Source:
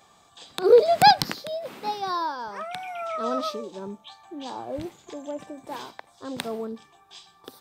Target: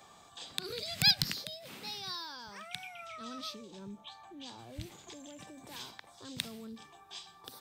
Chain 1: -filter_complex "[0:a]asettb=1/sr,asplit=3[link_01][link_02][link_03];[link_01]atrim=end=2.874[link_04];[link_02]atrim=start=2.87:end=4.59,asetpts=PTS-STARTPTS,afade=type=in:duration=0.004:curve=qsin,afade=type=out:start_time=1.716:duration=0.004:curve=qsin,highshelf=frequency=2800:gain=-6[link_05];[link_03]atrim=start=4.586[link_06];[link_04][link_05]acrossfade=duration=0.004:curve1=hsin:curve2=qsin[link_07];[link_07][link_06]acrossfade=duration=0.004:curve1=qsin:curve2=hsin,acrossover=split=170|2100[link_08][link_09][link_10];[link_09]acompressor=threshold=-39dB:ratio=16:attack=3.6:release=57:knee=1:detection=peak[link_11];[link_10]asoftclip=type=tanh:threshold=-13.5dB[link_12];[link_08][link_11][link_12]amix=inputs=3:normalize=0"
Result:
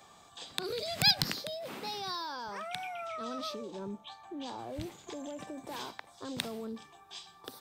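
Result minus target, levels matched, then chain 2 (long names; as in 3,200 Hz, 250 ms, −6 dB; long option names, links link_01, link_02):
downward compressor: peak gain reduction −11 dB
-filter_complex "[0:a]asettb=1/sr,asplit=3[link_01][link_02][link_03];[link_01]atrim=end=2.874[link_04];[link_02]atrim=start=2.87:end=4.59,asetpts=PTS-STARTPTS,afade=type=in:duration=0.004:curve=qsin,afade=type=out:start_time=1.716:duration=0.004:curve=qsin,highshelf=frequency=2800:gain=-6[link_05];[link_03]atrim=start=4.586[link_06];[link_04][link_05]acrossfade=duration=0.004:curve1=hsin:curve2=qsin[link_07];[link_07][link_06]acrossfade=duration=0.004:curve1=qsin:curve2=hsin,acrossover=split=170|2100[link_08][link_09][link_10];[link_09]acompressor=threshold=-51dB:ratio=16:attack=3.6:release=57:knee=1:detection=peak[link_11];[link_10]asoftclip=type=tanh:threshold=-13.5dB[link_12];[link_08][link_11][link_12]amix=inputs=3:normalize=0"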